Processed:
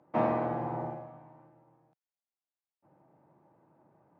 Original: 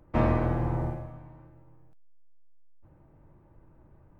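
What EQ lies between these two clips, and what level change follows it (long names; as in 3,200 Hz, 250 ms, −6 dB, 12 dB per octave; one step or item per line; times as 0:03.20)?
high-pass filter 150 Hz 24 dB per octave
high-frequency loss of the air 80 metres
parametric band 770 Hz +8.5 dB 0.9 octaves
−5.0 dB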